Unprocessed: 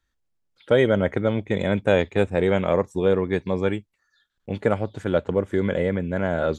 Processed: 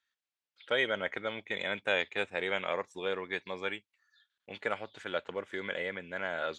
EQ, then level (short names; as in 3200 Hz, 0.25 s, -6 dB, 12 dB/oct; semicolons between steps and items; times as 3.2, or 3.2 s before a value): band-pass 2800 Hz, Q 0.92; 0.0 dB